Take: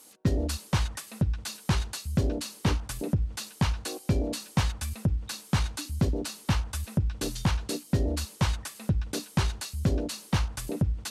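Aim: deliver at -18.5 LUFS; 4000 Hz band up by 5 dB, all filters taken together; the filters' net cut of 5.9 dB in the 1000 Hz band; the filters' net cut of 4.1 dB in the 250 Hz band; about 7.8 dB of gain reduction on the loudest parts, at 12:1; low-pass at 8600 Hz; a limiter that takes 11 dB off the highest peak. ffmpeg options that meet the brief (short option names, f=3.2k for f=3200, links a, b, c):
-af "lowpass=8.6k,equalizer=f=250:t=o:g=-6,equalizer=f=1k:t=o:g=-7.5,equalizer=f=4k:t=o:g=6.5,acompressor=threshold=-29dB:ratio=12,volume=19.5dB,alimiter=limit=-8dB:level=0:latency=1"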